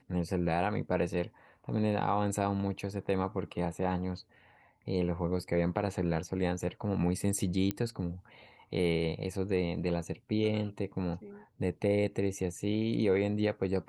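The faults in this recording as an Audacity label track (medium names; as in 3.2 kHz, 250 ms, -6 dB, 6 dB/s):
7.710000	7.710000	pop -17 dBFS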